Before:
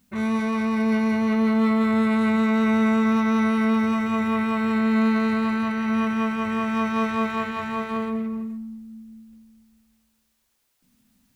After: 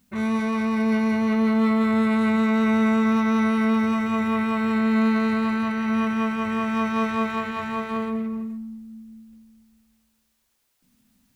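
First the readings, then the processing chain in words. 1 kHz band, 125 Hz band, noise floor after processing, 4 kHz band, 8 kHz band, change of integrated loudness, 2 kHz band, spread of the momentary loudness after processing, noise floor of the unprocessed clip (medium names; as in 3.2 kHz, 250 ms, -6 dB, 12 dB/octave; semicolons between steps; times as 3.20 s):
0.0 dB, 0.0 dB, -70 dBFS, 0.0 dB, no reading, 0.0 dB, 0.0 dB, 8 LU, -70 dBFS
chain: endings held to a fixed fall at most 120 dB/s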